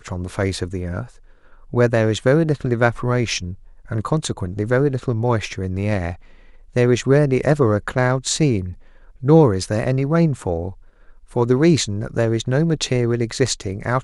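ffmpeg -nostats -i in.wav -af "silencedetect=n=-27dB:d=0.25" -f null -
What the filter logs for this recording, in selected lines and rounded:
silence_start: 1.03
silence_end: 1.73 | silence_duration: 0.70
silence_start: 3.53
silence_end: 3.91 | silence_duration: 0.38
silence_start: 6.13
silence_end: 6.76 | silence_duration: 0.63
silence_start: 8.72
silence_end: 9.23 | silence_duration: 0.51
silence_start: 10.70
silence_end: 11.36 | silence_duration: 0.66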